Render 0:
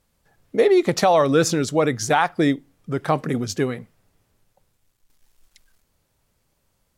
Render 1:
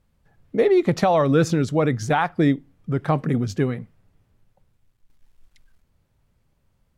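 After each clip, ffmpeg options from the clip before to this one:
-af "bass=f=250:g=8,treble=f=4000:g=-8,volume=0.75"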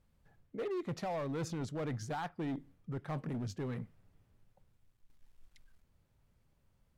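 -af "areverse,acompressor=threshold=0.0355:ratio=4,areverse,asoftclip=type=hard:threshold=0.0422,volume=0.501"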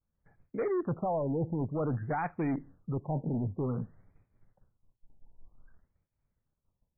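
-af "agate=range=0.0224:threshold=0.00112:ratio=3:detection=peak,afftfilt=real='re*lt(b*sr/1024,940*pow(2600/940,0.5+0.5*sin(2*PI*0.53*pts/sr)))':imag='im*lt(b*sr/1024,940*pow(2600/940,0.5+0.5*sin(2*PI*0.53*pts/sr)))':win_size=1024:overlap=0.75,volume=2.11"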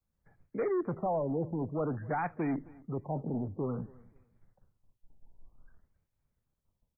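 -filter_complex "[0:a]acrossover=split=190|400|610[s0][s1][s2][s3];[s0]asoftclip=type=tanh:threshold=0.01[s4];[s4][s1][s2][s3]amix=inputs=4:normalize=0,aecho=1:1:263|526:0.0708|0.0156"

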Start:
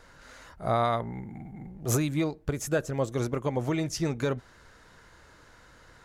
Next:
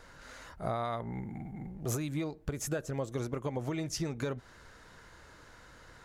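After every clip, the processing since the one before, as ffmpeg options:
-af "acompressor=threshold=0.0282:ratio=6"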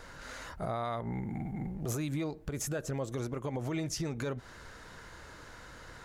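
-af "alimiter=level_in=2.24:limit=0.0631:level=0:latency=1:release=117,volume=0.447,volume=1.78"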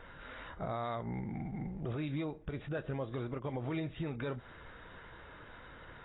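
-af "volume=0.75" -ar 16000 -c:a aac -b:a 16k

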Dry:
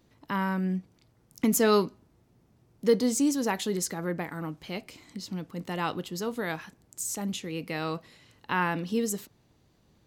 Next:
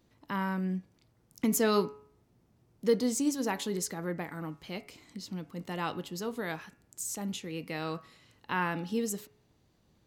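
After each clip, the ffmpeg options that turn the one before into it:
-af "bandreject=f=140.8:t=h:w=4,bandreject=f=281.6:t=h:w=4,bandreject=f=422.4:t=h:w=4,bandreject=f=563.2:t=h:w=4,bandreject=f=704:t=h:w=4,bandreject=f=844.8:t=h:w=4,bandreject=f=985.6:t=h:w=4,bandreject=f=1126.4:t=h:w=4,bandreject=f=1267.2:t=h:w=4,bandreject=f=1408:t=h:w=4,bandreject=f=1548.8:t=h:w=4,bandreject=f=1689.6:t=h:w=4,bandreject=f=1830.4:t=h:w=4,bandreject=f=1971.2:t=h:w=4,bandreject=f=2112:t=h:w=4,bandreject=f=2252.8:t=h:w=4,bandreject=f=2393.6:t=h:w=4,bandreject=f=2534.4:t=h:w=4,bandreject=f=2675.2:t=h:w=4,bandreject=f=2816:t=h:w=4,volume=0.668"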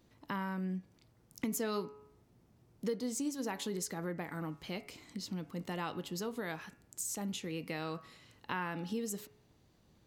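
-af "acompressor=threshold=0.0141:ratio=3,volume=1.12"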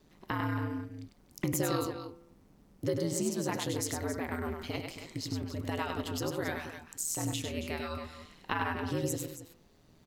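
-af "aeval=exprs='val(0)*sin(2*PI*80*n/s)':c=same,aecho=1:1:99.13|274.1:0.562|0.282,volume=2.11"

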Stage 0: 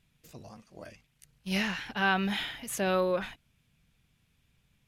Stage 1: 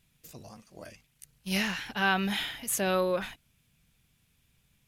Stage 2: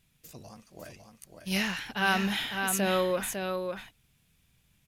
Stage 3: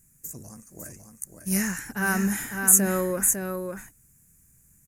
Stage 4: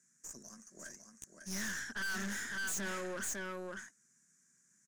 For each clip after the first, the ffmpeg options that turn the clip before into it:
-af "highshelf=f=6500:g=10"
-af "aecho=1:1:552:0.531"
-af "firequalizer=gain_entry='entry(290,0);entry(670,-10);entry(1700,-3);entry(3300,-26);entry(6900,11);entry(14000,8)':delay=0.05:min_phase=1,volume=1.88"
-af "highpass=f=230:w=0.5412,highpass=f=230:w=1.3066,equalizer=f=300:t=q:w=4:g=-9,equalizer=f=480:t=q:w=4:g=-9,equalizer=f=810:t=q:w=4:g=-10,equalizer=f=1600:t=q:w=4:g=7,equalizer=f=2600:t=q:w=4:g=-8,equalizer=f=5800:t=q:w=4:g=8,lowpass=f=7300:w=0.5412,lowpass=f=7300:w=1.3066,aeval=exprs='(tanh(50.1*val(0)+0.5)-tanh(0.5))/50.1':c=same,volume=0.75"

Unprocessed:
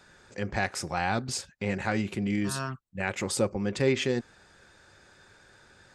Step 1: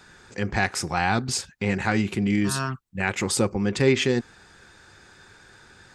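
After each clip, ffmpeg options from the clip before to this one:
-af "equalizer=f=580:w=4.6:g=-8,volume=2"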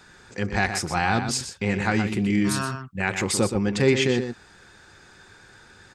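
-filter_complex "[0:a]asplit=2[s0][s1];[s1]adelay=122.4,volume=0.398,highshelf=f=4000:g=-2.76[s2];[s0][s2]amix=inputs=2:normalize=0"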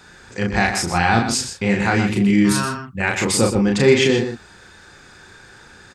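-filter_complex "[0:a]asplit=2[s0][s1];[s1]adelay=35,volume=0.708[s2];[s0][s2]amix=inputs=2:normalize=0,volume=1.58"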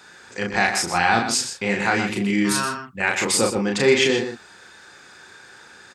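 -af "highpass=f=410:p=1"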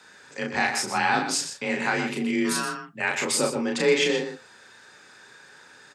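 -af "afreqshift=32,flanger=delay=6.5:depth=4.1:regen=-80:speed=0.34:shape=sinusoidal"

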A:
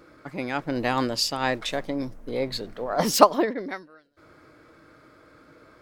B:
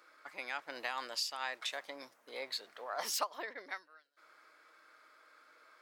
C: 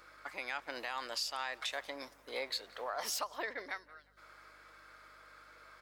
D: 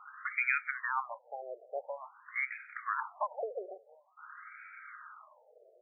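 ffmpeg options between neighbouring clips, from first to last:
-af "highpass=1000,acompressor=threshold=0.0282:ratio=3,volume=0.596"
-filter_complex "[0:a]alimiter=level_in=2.37:limit=0.0631:level=0:latency=1:release=235,volume=0.422,aeval=exprs='val(0)+0.000141*(sin(2*PI*50*n/s)+sin(2*PI*2*50*n/s)/2+sin(2*PI*3*50*n/s)/3+sin(2*PI*4*50*n/s)/4+sin(2*PI*5*50*n/s)/5)':c=same,asplit=2[s0][s1];[s1]adelay=178,lowpass=f=3800:p=1,volume=0.0794,asplit=2[s2][s3];[s3]adelay=178,lowpass=f=3800:p=1,volume=0.43,asplit=2[s4][s5];[s5]adelay=178,lowpass=f=3800:p=1,volume=0.43[s6];[s0][s2][s4][s6]amix=inputs=4:normalize=0,volume=1.78"
-af "highpass=280,equalizer=f=320:t=q:w=4:g=7,equalizer=f=710:t=q:w=4:g=-5,equalizer=f=2500:t=q:w=4:g=9,lowpass=f=2600:w=0.5412,lowpass=f=2600:w=1.3066,aeval=exprs='0.0668*(cos(1*acos(clip(val(0)/0.0668,-1,1)))-cos(1*PI/2))+0.0075*(cos(4*acos(clip(val(0)/0.0668,-1,1)))-cos(4*PI/2))+0.00376*(cos(6*acos(clip(val(0)/0.0668,-1,1)))-cos(6*PI/2))':c=same,afftfilt=real='re*between(b*sr/1024,520*pow(1800/520,0.5+0.5*sin(2*PI*0.48*pts/sr))/1.41,520*pow(1800/520,0.5+0.5*sin(2*PI*0.48*pts/sr))*1.41)':imag='im*between(b*sr/1024,520*pow(1800/520,0.5+0.5*sin(2*PI*0.48*pts/sr))/1.41,520*pow(1800/520,0.5+0.5*sin(2*PI*0.48*pts/sr))*1.41)':win_size=1024:overlap=0.75,volume=2.66"

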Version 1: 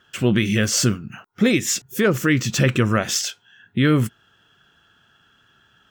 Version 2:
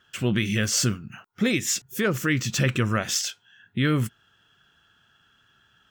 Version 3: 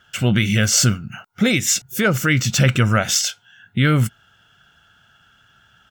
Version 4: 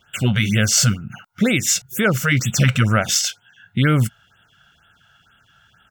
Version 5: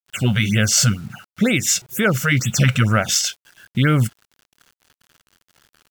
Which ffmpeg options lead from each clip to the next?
-af "equalizer=f=400:w=0.48:g=-4,volume=0.708"
-af "aecho=1:1:1.4:0.42,volume=2.11"
-af "afftfilt=real='re*(1-between(b*sr/1024,270*pow(5600/270,0.5+0.5*sin(2*PI*2.1*pts/sr))/1.41,270*pow(5600/270,0.5+0.5*sin(2*PI*2.1*pts/sr))*1.41))':imag='im*(1-between(b*sr/1024,270*pow(5600/270,0.5+0.5*sin(2*PI*2.1*pts/sr))/1.41,270*pow(5600/270,0.5+0.5*sin(2*PI*2.1*pts/sr))*1.41))':win_size=1024:overlap=0.75"
-af "acrusher=bits=7:mix=0:aa=0.000001"

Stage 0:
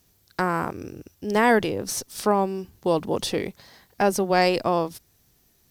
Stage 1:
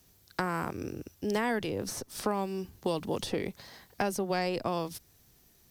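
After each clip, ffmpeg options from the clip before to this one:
-filter_complex "[0:a]acrossover=split=230|1900[s0][s1][s2];[s0]acompressor=threshold=0.0126:ratio=4[s3];[s1]acompressor=threshold=0.0282:ratio=4[s4];[s2]acompressor=threshold=0.0112:ratio=4[s5];[s3][s4][s5]amix=inputs=3:normalize=0"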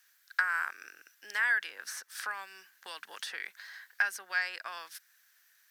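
-af "highpass=f=1600:t=q:w=6.3,volume=0.668"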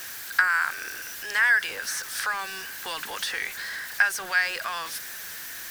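-af "aeval=exprs='val(0)+0.5*0.0106*sgn(val(0))':c=same,volume=2.24"

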